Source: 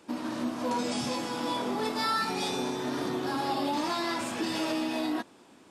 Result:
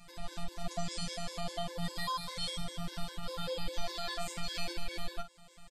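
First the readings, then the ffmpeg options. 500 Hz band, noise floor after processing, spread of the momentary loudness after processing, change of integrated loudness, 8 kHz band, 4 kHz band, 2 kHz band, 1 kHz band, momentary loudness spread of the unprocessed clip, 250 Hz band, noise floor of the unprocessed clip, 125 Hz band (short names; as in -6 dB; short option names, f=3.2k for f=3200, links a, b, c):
-9.5 dB, -55 dBFS, 8 LU, -8.5 dB, -5.0 dB, -4.0 dB, -9.0 dB, -11.0 dB, 4 LU, -15.0 dB, -56 dBFS, +0.5 dB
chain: -filter_complex "[0:a]equalizer=f=690:w=1.1:g=-10.5,acompressor=threshold=-50dB:ratio=1.5,afreqshift=-290,afftfilt=real='hypot(re,im)*cos(PI*b)':imag='0':win_size=1024:overlap=0.75,asplit=2[a][b];[b]aecho=0:1:10|52:0.501|0.316[c];[a][c]amix=inputs=2:normalize=0,afftfilt=real='re*gt(sin(2*PI*5*pts/sr)*(1-2*mod(floor(b*sr/1024/290),2)),0)':imag='im*gt(sin(2*PI*5*pts/sr)*(1-2*mod(floor(b*sr/1024/290),2)),0)':win_size=1024:overlap=0.75,volume=8.5dB"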